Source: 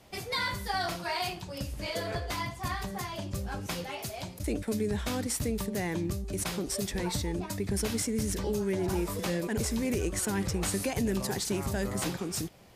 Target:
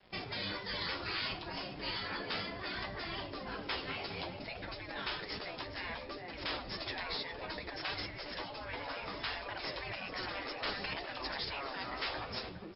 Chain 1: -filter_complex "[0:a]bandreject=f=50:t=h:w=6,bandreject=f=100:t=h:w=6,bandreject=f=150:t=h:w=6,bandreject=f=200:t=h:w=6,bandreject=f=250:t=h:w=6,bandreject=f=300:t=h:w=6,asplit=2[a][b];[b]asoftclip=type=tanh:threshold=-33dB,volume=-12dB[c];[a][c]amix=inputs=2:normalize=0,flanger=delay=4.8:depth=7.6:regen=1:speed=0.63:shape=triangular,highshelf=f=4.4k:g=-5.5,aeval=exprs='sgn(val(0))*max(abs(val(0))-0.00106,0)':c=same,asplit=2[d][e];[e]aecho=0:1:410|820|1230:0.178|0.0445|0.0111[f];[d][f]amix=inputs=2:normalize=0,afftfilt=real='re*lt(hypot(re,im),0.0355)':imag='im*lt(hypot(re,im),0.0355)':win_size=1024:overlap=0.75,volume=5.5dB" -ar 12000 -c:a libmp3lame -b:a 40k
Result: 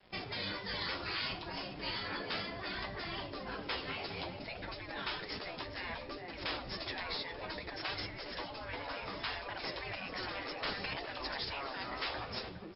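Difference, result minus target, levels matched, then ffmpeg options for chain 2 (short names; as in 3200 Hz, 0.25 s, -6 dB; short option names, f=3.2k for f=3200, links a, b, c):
soft clip: distortion +7 dB
-filter_complex "[0:a]bandreject=f=50:t=h:w=6,bandreject=f=100:t=h:w=6,bandreject=f=150:t=h:w=6,bandreject=f=200:t=h:w=6,bandreject=f=250:t=h:w=6,bandreject=f=300:t=h:w=6,asplit=2[a][b];[b]asoftclip=type=tanh:threshold=-26.5dB,volume=-12dB[c];[a][c]amix=inputs=2:normalize=0,flanger=delay=4.8:depth=7.6:regen=1:speed=0.63:shape=triangular,highshelf=f=4.4k:g=-5.5,aeval=exprs='sgn(val(0))*max(abs(val(0))-0.00106,0)':c=same,asplit=2[d][e];[e]aecho=0:1:410|820|1230:0.178|0.0445|0.0111[f];[d][f]amix=inputs=2:normalize=0,afftfilt=real='re*lt(hypot(re,im),0.0355)':imag='im*lt(hypot(re,im),0.0355)':win_size=1024:overlap=0.75,volume=5.5dB" -ar 12000 -c:a libmp3lame -b:a 40k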